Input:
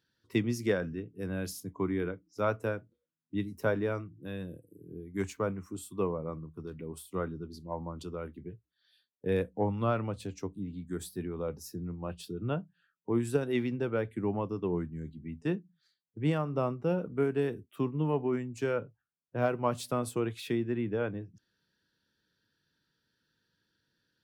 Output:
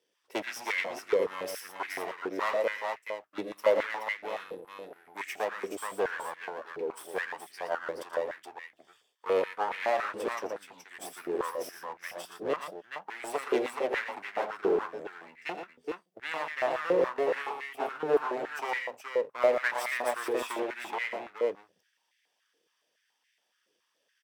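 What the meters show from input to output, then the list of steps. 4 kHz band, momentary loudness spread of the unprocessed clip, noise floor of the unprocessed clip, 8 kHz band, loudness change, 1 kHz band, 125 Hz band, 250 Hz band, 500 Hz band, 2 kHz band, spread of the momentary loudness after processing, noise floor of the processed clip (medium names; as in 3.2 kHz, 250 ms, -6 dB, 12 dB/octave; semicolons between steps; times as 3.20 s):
+5.0 dB, 12 LU, -84 dBFS, +1.5 dB, +1.5 dB, +6.0 dB, -23.0 dB, -8.5 dB, +3.0 dB, +8.5 dB, 13 LU, -77 dBFS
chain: comb filter that takes the minimum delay 0.37 ms; on a send: multi-tap echo 84/117/424 ms -15/-7.5/-5 dB; on the sum: one-sided clip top -31 dBFS; step-sequenced high-pass 7.1 Hz 460–2000 Hz; trim +2 dB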